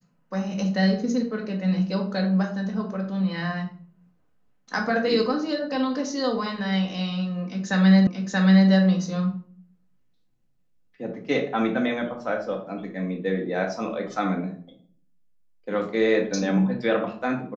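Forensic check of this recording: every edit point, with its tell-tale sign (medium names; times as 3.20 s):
8.07 s: repeat of the last 0.63 s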